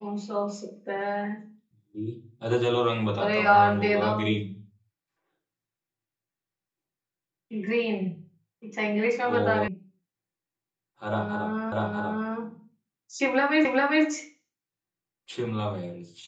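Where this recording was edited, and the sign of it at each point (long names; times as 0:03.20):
0:09.68: cut off before it has died away
0:11.72: the same again, the last 0.64 s
0:13.65: the same again, the last 0.4 s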